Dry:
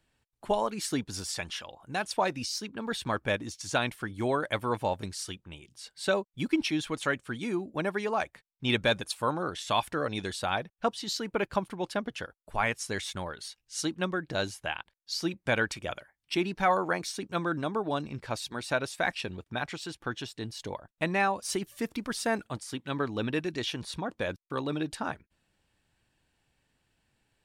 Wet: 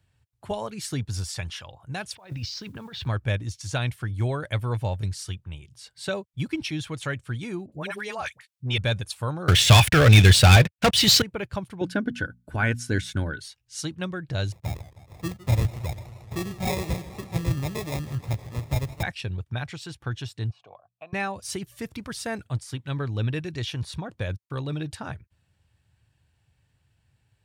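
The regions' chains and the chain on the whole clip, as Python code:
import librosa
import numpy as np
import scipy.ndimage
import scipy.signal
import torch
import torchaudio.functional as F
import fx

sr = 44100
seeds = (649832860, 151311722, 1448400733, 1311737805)

y = fx.chain(x, sr, fx.lowpass(hz=4800.0, slope=24),
    fx.over_compress(threshold_db=-40.0, ratio=-1.0),
    fx.mod_noise(seeds[0], snr_db=28), at=(2.15, 3.07))
y = fx.chain(y, sr, fx.highpass(hz=59.0, slope=12),
    fx.tilt_shelf(db=-5.5, hz=760.0),
    fx.dispersion(late='highs', ms=62.0, hz=900.0), at=(7.66, 8.78))
y = fx.chain(y, sr, fx.peak_eq(hz=2400.0, db=8.5, octaves=1.1),
    fx.leveller(passes=5), at=(9.48, 11.22))
y = fx.chain(y, sr, fx.hum_notches(base_hz=60, count=4),
    fx.small_body(hz=(280.0, 1500.0), ring_ms=35, db=18), at=(11.81, 13.4))
y = fx.chain(y, sr, fx.cvsd(bps=16000),
    fx.sample_hold(seeds[1], rate_hz=1500.0, jitter_pct=0),
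    fx.echo_warbled(ms=157, feedback_pct=73, rate_hz=2.8, cents=141, wet_db=-17.5), at=(14.52, 19.03))
y = fx.chain(y, sr, fx.vowel_filter(vowel='a'),
    fx.hum_notches(base_hz=60, count=3),
    fx.band_squash(depth_pct=40), at=(20.5, 21.13))
y = fx.dynamic_eq(y, sr, hz=1000.0, q=1.2, threshold_db=-41.0, ratio=4.0, max_db=-5)
y = scipy.signal.sosfilt(scipy.signal.butter(2, 79.0, 'highpass', fs=sr, output='sos'), y)
y = fx.low_shelf_res(y, sr, hz=160.0, db=13.5, q=1.5)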